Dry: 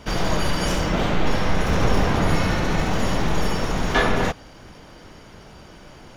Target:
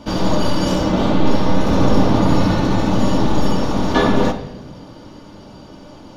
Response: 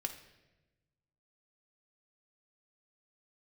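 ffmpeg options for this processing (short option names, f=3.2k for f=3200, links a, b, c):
-filter_complex "[0:a]equalizer=f=125:t=o:w=1:g=8,equalizer=f=250:t=o:w=1:g=10,equalizer=f=500:t=o:w=1:g=5,equalizer=f=1k:t=o:w=1:g=7,equalizer=f=2k:t=o:w=1:g=-5,equalizer=f=4k:t=o:w=1:g=7[a];[1:a]atrim=start_sample=2205[b];[a][b]afir=irnorm=-1:irlink=0,volume=-2.5dB"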